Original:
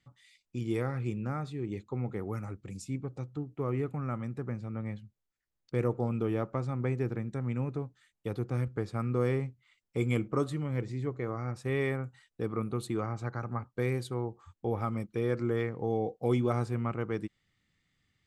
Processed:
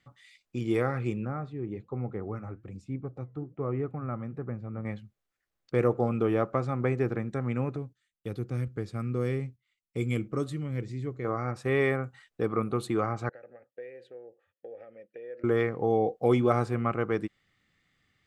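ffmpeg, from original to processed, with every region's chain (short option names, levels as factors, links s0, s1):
-filter_complex "[0:a]asettb=1/sr,asplit=3[s0][s1][s2];[s0]atrim=end=1.254[s3];[s1]atrim=start=1.25:end=4.85,asetpts=PTS-STARTPTS,afade=t=in:d=0.004:c=qsin,afade=t=out:st=3.596:d=0.004:c=qsin,lowpass=f=1300:p=1,equalizer=f=75:w=0.61:g=4.5,flanger=delay=0.1:depth=5.3:regen=-87:speed=1.2:shape=sinusoidal[s4];[s2]atrim=start=4.846[s5];[s3][s4]acrossfade=d=0.004:c1=hsin:c2=qsin[s6];[s6][s5]acrossfade=d=0.004:c1=qsin:c2=hsin,asettb=1/sr,asplit=3[s7][s8][s9];[s7]atrim=end=7.764[s10];[s8]atrim=start=7.76:end=11.25,asetpts=PTS-STARTPTS,afade=t=in:d=0.004:c=qsin,afade=t=out:st=3.486:d=0.004:c=qsin,agate=range=0.282:threshold=0.00141:ratio=16:release=100:detection=peak,equalizer=f=920:t=o:w=2.5:g=-13[s11];[s9]atrim=start=11.246[s12];[s10][s11]acrossfade=d=0.004:c1=hsin:c2=qsin[s13];[s13][s12]acrossfade=d=0.004:c1=qsin:c2=hsin,asettb=1/sr,asplit=3[s14][s15][s16];[s14]atrim=end=13.294[s17];[s15]atrim=start=13.29:end=15.44,asetpts=PTS-STARTPTS,afade=t=in:d=0.004:c=qsin,afade=t=out:st=2.146:d=0.004:c=qsin,acompressor=threshold=0.02:ratio=6:attack=3.2:release=140:knee=1:detection=peak,asplit=3[s18][s19][s20];[s18]bandpass=f=530:t=q:w=8,volume=1[s21];[s19]bandpass=f=1840:t=q:w=8,volume=0.501[s22];[s20]bandpass=f=2480:t=q:w=8,volume=0.355[s23];[s21][s22][s23]amix=inputs=3:normalize=0[s24];[s16]atrim=start=15.436[s25];[s17][s24]acrossfade=d=0.004:c1=hsin:c2=qsin[s26];[s26][s25]acrossfade=d=0.004:c1=qsin:c2=hsin,equalizer=f=960:w=0.32:g=8,bandreject=f=930:w=9.3"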